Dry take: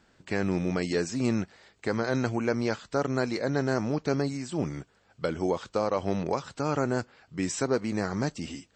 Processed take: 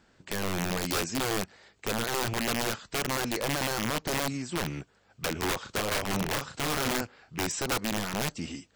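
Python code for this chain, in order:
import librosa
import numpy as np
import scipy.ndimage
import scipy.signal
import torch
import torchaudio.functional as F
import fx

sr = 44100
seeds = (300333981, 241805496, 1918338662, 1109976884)

y = fx.rattle_buzz(x, sr, strikes_db=-38.0, level_db=-37.0)
y = fx.doubler(y, sr, ms=37.0, db=-5.5, at=(5.61, 7.41))
y = (np.mod(10.0 ** (23.0 / 20.0) * y + 1.0, 2.0) - 1.0) / 10.0 ** (23.0 / 20.0)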